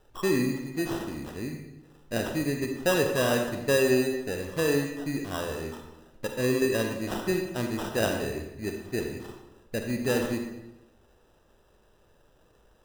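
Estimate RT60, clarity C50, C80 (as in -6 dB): 0.90 s, 4.5 dB, 7.0 dB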